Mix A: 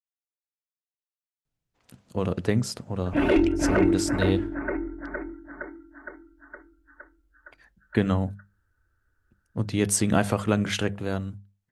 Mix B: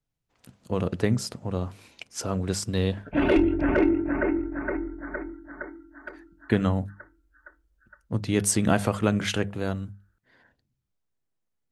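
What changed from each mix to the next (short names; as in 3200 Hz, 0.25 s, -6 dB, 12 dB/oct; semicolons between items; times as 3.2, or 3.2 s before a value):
speech: entry -1.45 s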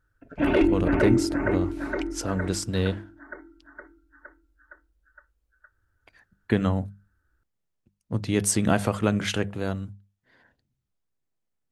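background: entry -2.75 s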